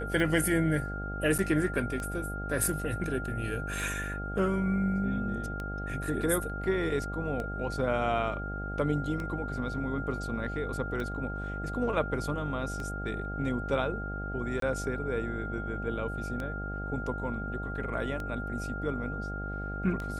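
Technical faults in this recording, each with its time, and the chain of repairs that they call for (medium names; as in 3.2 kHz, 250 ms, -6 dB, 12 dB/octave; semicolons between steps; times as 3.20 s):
buzz 50 Hz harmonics 16 -37 dBFS
tick 33 1/3 rpm
whine 1.4 kHz -38 dBFS
1.38–1.39 s: dropout 7.3 ms
14.60–14.62 s: dropout 23 ms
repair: de-click; band-stop 1.4 kHz, Q 30; de-hum 50 Hz, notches 16; interpolate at 1.38 s, 7.3 ms; interpolate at 14.60 s, 23 ms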